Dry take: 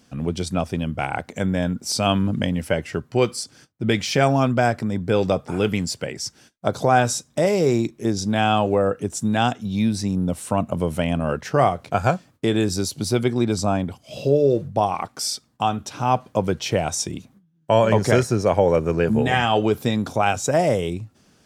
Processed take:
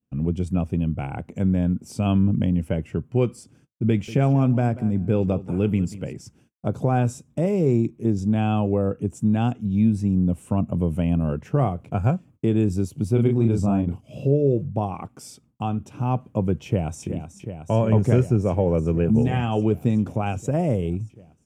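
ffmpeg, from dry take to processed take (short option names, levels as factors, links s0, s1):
-filter_complex "[0:a]asettb=1/sr,asplit=3[s0][s1][s2];[s0]atrim=end=3.894[s3];[s1]atrim=start=3.89:end=6.21,asetpts=PTS-STARTPTS,afade=t=in:d=0.004:c=qsin,afade=t=out:st=2.316:d=0.004:c=qsin,aecho=1:1:188|376:0.158|0.0285,atrim=end_sample=102312[s4];[s2]atrim=start=6.206[s5];[s3][s4]acrossfade=d=0.004:c1=hsin:c2=qsin[s6];[s6][s5]acrossfade=d=0.004:c1=qsin:c2=hsin,asplit=3[s7][s8][s9];[s7]afade=t=out:st=13.16:d=0.02[s10];[s8]asplit=2[s11][s12];[s12]adelay=35,volume=0.631[s13];[s11][s13]amix=inputs=2:normalize=0,afade=t=in:st=13.16:d=0.02,afade=t=out:st=14.25:d=0.02[s14];[s9]afade=t=in:st=14.25:d=0.02[s15];[s10][s14][s15]amix=inputs=3:normalize=0,asplit=2[s16][s17];[s17]afade=t=in:st=16.65:d=0.01,afade=t=out:st=17.07:d=0.01,aecho=0:1:370|740|1110|1480|1850|2220|2590|2960|3330|3700|4070|4440:0.334965|0.284721|0.242013|0.205711|0.174854|0.148626|0.126332|0.107382|0.0912749|0.0775837|0.0659461|0.0560542[s18];[s16][s18]amix=inputs=2:normalize=0,agate=range=0.0224:threshold=0.00708:ratio=3:detection=peak,firequalizer=gain_entry='entry(140,0);entry(630,-12);entry(1100,-13);entry(1800,-19);entry(2600,-12);entry(4100,-27);entry(7200,-17)':delay=0.05:min_phase=1,volume=1.5"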